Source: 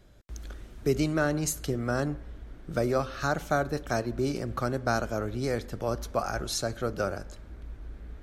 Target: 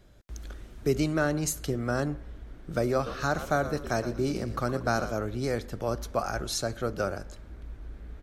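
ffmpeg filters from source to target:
ffmpeg -i in.wav -filter_complex "[0:a]asplit=3[link_01][link_02][link_03];[link_01]afade=type=out:start_time=3.05:duration=0.02[link_04];[link_02]asplit=5[link_05][link_06][link_07][link_08][link_09];[link_06]adelay=117,afreqshift=-67,volume=-11.5dB[link_10];[link_07]adelay=234,afreqshift=-134,volume=-20.9dB[link_11];[link_08]adelay=351,afreqshift=-201,volume=-30.2dB[link_12];[link_09]adelay=468,afreqshift=-268,volume=-39.6dB[link_13];[link_05][link_10][link_11][link_12][link_13]amix=inputs=5:normalize=0,afade=type=in:start_time=3.05:duration=0.02,afade=type=out:start_time=5.11:duration=0.02[link_14];[link_03]afade=type=in:start_time=5.11:duration=0.02[link_15];[link_04][link_14][link_15]amix=inputs=3:normalize=0" out.wav

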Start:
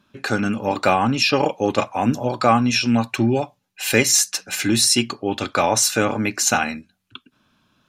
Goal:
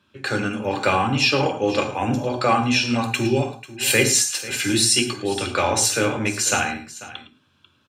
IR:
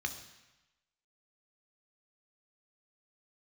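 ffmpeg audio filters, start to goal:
-filter_complex "[0:a]asettb=1/sr,asplit=3[link_01][link_02][link_03];[link_01]atrim=end=2.854[link_04];[link_02]atrim=start=2.85:end=3.94,asetpts=PTS-STARTPTS,afade=type=in:duration=0.004:curve=qsin,afade=type=out:start_time=1.086:duration=0.004:curve=qsin,highshelf=frequency=4100:gain=8[link_05];[link_03]atrim=start=3.936[link_06];[link_04][link_05]acrossfade=duration=0.004:curve1=hsin:curve2=qsin[link_07];[link_07][link_06]acrossfade=duration=0.004:curve1=qsin:curve2=hsin,aecho=1:1:111|492:0.168|0.141[link_08];[1:a]atrim=start_sample=2205,atrim=end_sample=6615,asetrate=57330,aresample=44100[link_09];[link_08][link_09]afir=irnorm=-1:irlink=0"

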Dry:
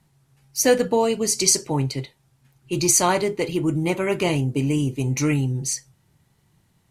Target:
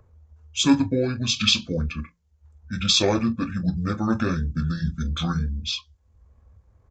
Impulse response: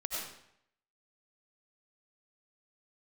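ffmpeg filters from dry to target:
-filter_complex "[0:a]afftdn=noise_reduction=15:noise_floor=-45,bandreject=frequency=50:width_type=h:width=6,bandreject=frequency=100:width_type=h:width=6,bandreject=frequency=150:width_type=h:width=6,bandreject=frequency=200:width_type=h:width=6,bandreject=frequency=250:width_type=h:width=6,bandreject=frequency=300:width_type=h:width=6,acrossover=split=2600[link_01][link_02];[link_01]acompressor=mode=upward:threshold=-34dB:ratio=2.5[link_03];[link_03][link_02]amix=inputs=2:normalize=0,aexciter=amount=2.1:drive=1.1:freq=11000,aecho=1:1:10|37:0.501|0.168,asetrate=24750,aresample=44100,atempo=1.7818,volume=-2.5dB"

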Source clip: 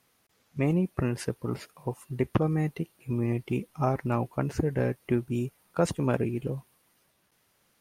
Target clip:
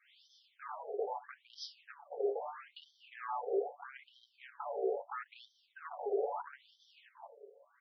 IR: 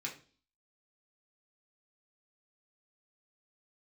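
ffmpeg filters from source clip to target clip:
-filter_complex "[0:a]aecho=1:1:697:0.0708,areverse,acompressor=threshold=-37dB:ratio=6,areverse,lowshelf=frequency=450:width_type=q:width=3:gain=10,acrossover=split=330|3000[link_01][link_02][link_03];[link_02]acompressor=threshold=-42dB:ratio=6[link_04];[link_01][link_04][link_03]amix=inputs=3:normalize=0,afreqshift=140[link_05];[1:a]atrim=start_sample=2205,asetrate=61740,aresample=44100[link_06];[link_05][link_06]afir=irnorm=-1:irlink=0,aeval=exprs='(tanh(56.2*val(0)+0.7)-tanh(0.7))/56.2':channel_layout=same,equalizer=frequency=1900:width=1.5:gain=-2.5,aecho=1:1:7:0.66,alimiter=level_in=13.5dB:limit=-24dB:level=0:latency=1:release=69,volume=-13.5dB,afftfilt=real='re*between(b*sr/1024,540*pow(4400/540,0.5+0.5*sin(2*PI*0.77*pts/sr))/1.41,540*pow(4400/540,0.5+0.5*sin(2*PI*0.77*pts/sr))*1.41)':imag='im*between(b*sr/1024,540*pow(4400/540,0.5+0.5*sin(2*PI*0.77*pts/sr))/1.41,540*pow(4400/540,0.5+0.5*sin(2*PI*0.77*pts/sr))*1.41)':win_size=1024:overlap=0.75,volume=17dB"

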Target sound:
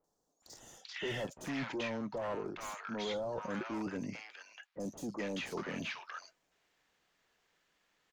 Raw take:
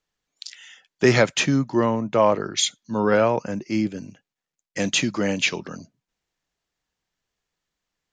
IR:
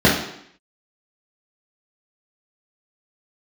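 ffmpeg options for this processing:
-filter_complex "[0:a]asoftclip=type=tanh:threshold=-22dB,areverse,acompressor=threshold=-39dB:ratio=10,areverse,highshelf=frequency=5600:gain=7,asplit=2[link_01][link_02];[link_02]highpass=frequency=720:poles=1,volume=19dB,asoftclip=type=tanh:threshold=-27dB[link_03];[link_01][link_03]amix=inputs=2:normalize=0,lowpass=frequency=1500:poles=1,volume=-6dB,acrossover=split=910|5600[link_04][link_05][link_06];[link_06]adelay=40[link_07];[link_05]adelay=430[link_08];[link_04][link_08][link_07]amix=inputs=3:normalize=0"

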